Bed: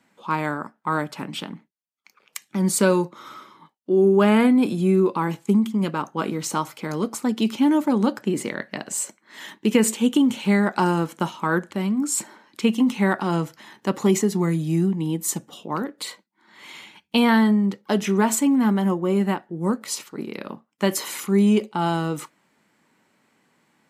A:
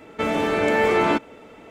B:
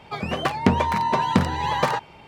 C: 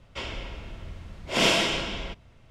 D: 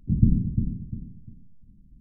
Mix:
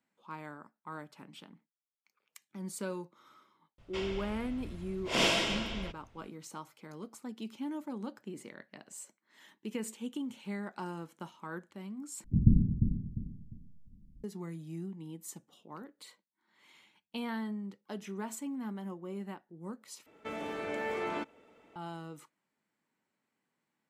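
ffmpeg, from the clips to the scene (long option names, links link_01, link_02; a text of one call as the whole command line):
ffmpeg -i bed.wav -i cue0.wav -i cue1.wav -i cue2.wav -i cue3.wav -filter_complex "[0:a]volume=-20dB[link_01];[1:a]lowshelf=frequency=130:gain=-6[link_02];[link_01]asplit=3[link_03][link_04][link_05];[link_03]atrim=end=12.244[link_06];[4:a]atrim=end=2,asetpts=PTS-STARTPTS,volume=-4dB[link_07];[link_04]atrim=start=14.236:end=20.064[link_08];[link_02]atrim=end=1.7,asetpts=PTS-STARTPTS,volume=-16dB[link_09];[link_05]atrim=start=21.756[link_10];[3:a]atrim=end=2.5,asetpts=PTS-STARTPTS,volume=-6dB,afade=type=in:duration=0.004:curve=hsin,afade=type=out:start_time=2.496:duration=0.004:curve=hsin,adelay=3780[link_11];[link_06][link_07]acrossfade=duration=0.004:curve1=hsin:curve2=hsin[link_12];[link_12][link_08]acrossfade=duration=0.004:curve1=hsin:curve2=hsin[link_13];[link_13][link_09]acrossfade=duration=0.004:curve1=hsin:curve2=hsin[link_14];[link_14][link_10]acrossfade=duration=0.004:curve1=hsin:curve2=hsin[link_15];[link_15][link_11]amix=inputs=2:normalize=0" out.wav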